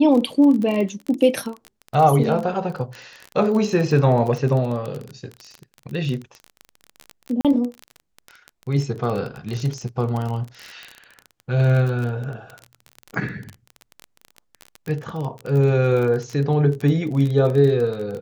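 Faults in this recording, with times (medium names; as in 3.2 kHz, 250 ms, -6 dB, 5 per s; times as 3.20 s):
crackle 26 per s -25 dBFS
7.41–7.45 s: dropout 37 ms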